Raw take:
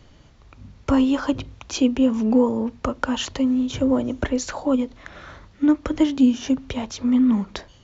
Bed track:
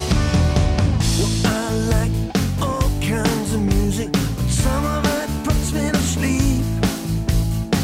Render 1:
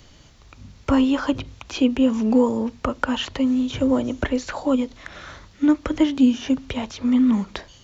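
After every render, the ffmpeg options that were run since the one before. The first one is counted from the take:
-filter_complex "[0:a]acrossover=split=3200[a][b];[b]acompressor=threshold=-52dB:ratio=4:attack=1:release=60[c];[a][c]amix=inputs=2:normalize=0,highshelf=f=3k:g=11"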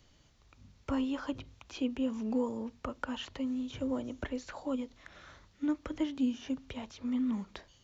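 -af "volume=-14.5dB"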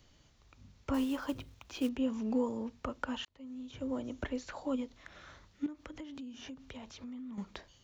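-filter_complex "[0:a]asettb=1/sr,asplit=3[a][b][c];[a]atrim=end=0.944[d];[b]atrim=start=0.94:end=1.89,asetpts=PTS-STARTPTS,afade=t=in:d=0.004:c=qsin,afade=t=out:st=0.946:d=0.004:c=qsin,acrusher=bits=5:mode=log:mix=0:aa=0.000001[e];[c]atrim=start=1.886[f];[d][e]acrossfade=d=0.004:c1=hsin:c2=qsin[g];[g][f]acrossfade=d=0.004:c1=qsin:c2=hsin,asettb=1/sr,asplit=3[h][i][j];[h]atrim=end=5.664[k];[i]atrim=start=5.66:end=7.38,asetpts=PTS-STARTPTS,afade=t=in:d=0.004:c=qsin,afade=t=out:st=1.716:d=0.004:c=qsin,acompressor=threshold=-42dB:ratio=10:attack=3.2:release=140:knee=1:detection=peak[l];[j]atrim=start=7.376[m];[k][l]acrossfade=d=0.004:c1=hsin:c2=qsin[n];[n][m]acrossfade=d=0.004:c1=qsin:c2=hsin,asplit=2[o][p];[o]atrim=end=3.25,asetpts=PTS-STARTPTS,afade=t=out:st=3.246:d=0.004:c=hsin[q];[p]atrim=start=3.25,asetpts=PTS-STARTPTS,afade=t=in:d=0.91[r];[q][r]concat=n=2:v=0:a=1"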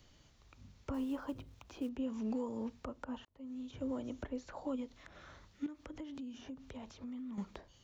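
-filter_complex "[0:a]acrossover=split=1200[a][b];[a]alimiter=level_in=6.5dB:limit=-24dB:level=0:latency=1:release=279,volume=-6.5dB[c];[b]acompressor=threshold=-57dB:ratio=10[d];[c][d]amix=inputs=2:normalize=0"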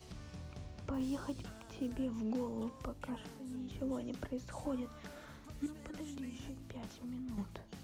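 -filter_complex "[1:a]volume=-32.5dB[a];[0:a][a]amix=inputs=2:normalize=0"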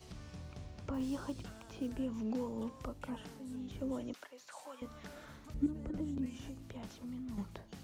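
-filter_complex "[0:a]asettb=1/sr,asplit=3[a][b][c];[a]atrim=end=4.134[d];[b]atrim=start=4.13:end=4.82,asetpts=PTS-STARTPTS,afade=t=in:d=0.004:c=qsin,afade=t=out:st=0.686:d=0.004:c=qsin,highpass=890[e];[c]atrim=start=4.816[f];[d][e]acrossfade=d=0.004:c1=hsin:c2=qsin[g];[g][f]acrossfade=d=0.004:c1=qsin:c2=hsin,asettb=1/sr,asplit=3[h][i][j];[h]atrim=end=5.544[k];[i]atrim=start=5.54:end=6.26,asetpts=PTS-STARTPTS,afade=t=in:d=0.004:c=qsin,afade=t=out:st=0.716:d=0.004:c=qsin,tiltshelf=f=780:g=9.5[l];[j]atrim=start=6.256[m];[k][l]acrossfade=d=0.004:c1=hsin:c2=qsin[n];[n][m]acrossfade=d=0.004:c1=qsin:c2=hsin"

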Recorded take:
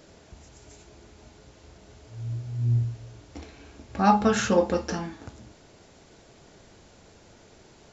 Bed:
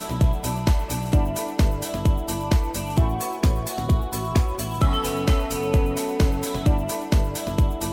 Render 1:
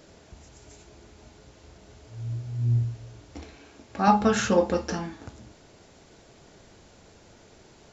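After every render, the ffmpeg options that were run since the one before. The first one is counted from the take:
-filter_complex "[0:a]asettb=1/sr,asplit=3[a][b][c];[a]atrim=end=3.574[d];[b]atrim=start=3.57:end=4.08,asetpts=PTS-STARTPTS,afade=t=in:d=0.004:c=qsin,afade=t=out:st=0.506:d=0.004:c=qsin,highpass=f=210:p=1[e];[c]atrim=start=4.076[f];[d][e]acrossfade=d=0.004:c1=hsin:c2=qsin[g];[g][f]acrossfade=d=0.004:c1=qsin:c2=hsin"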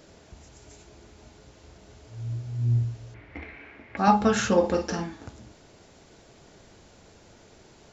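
-filter_complex "[0:a]asettb=1/sr,asplit=3[a][b][c];[a]atrim=end=3.144[d];[b]atrim=start=3.14:end=3.97,asetpts=PTS-STARTPTS,afade=t=in:d=0.004:c=qsin,afade=t=out:st=0.826:d=0.004:c=qsin,lowpass=f=2.1k:t=q:w=5.7[e];[c]atrim=start=3.966[f];[d][e]acrossfade=d=0.004:c1=hsin:c2=qsin[g];[g][f]acrossfade=d=0.004:c1=qsin:c2=hsin,asettb=1/sr,asplit=3[h][i][j];[h]atrim=end=4.594[k];[i]atrim=start=4.59:end=5.04,asetpts=PTS-STARTPTS,afade=t=in:d=0.004:c=qsin,afade=t=out:st=0.446:d=0.004:c=qsin,asplit=2[l][m];[m]adelay=48,volume=-8dB[n];[l][n]amix=inputs=2:normalize=0,atrim=end_sample=19845[o];[j]atrim=start=5.036[p];[k][o]acrossfade=d=0.004:c1=hsin:c2=qsin[q];[q][p]acrossfade=d=0.004:c1=qsin:c2=hsin"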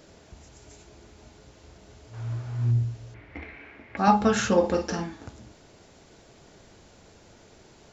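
-filter_complex "[0:a]asplit=3[a][b][c];[a]afade=t=out:st=2.13:d=0.02[d];[b]equalizer=f=1.2k:w=0.72:g=12,afade=t=in:st=2.13:d=0.02,afade=t=out:st=2.7:d=0.02[e];[c]afade=t=in:st=2.7:d=0.02[f];[d][e][f]amix=inputs=3:normalize=0"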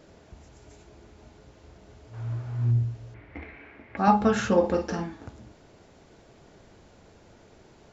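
-af "highshelf=f=3.2k:g=-8.5"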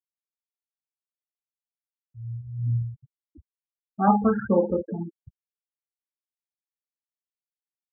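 -af "afftfilt=real='re*gte(hypot(re,im),0.112)':imag='im*gte(hypot(re,im),0.112)':win_size=1024:overlap=0.75,aecho=1:1:5.2:0.35"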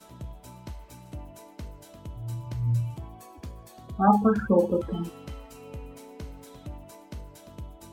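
-filter_complex "[1:a]volume=-20.5dB[a];[0:a][a]amix=inputs=2:normalize=0"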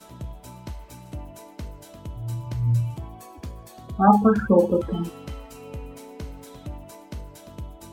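-af "volume=4dB"

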